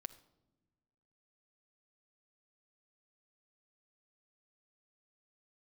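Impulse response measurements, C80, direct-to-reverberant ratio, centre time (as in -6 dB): 18.0 dB, 10.5 dB, 5 ms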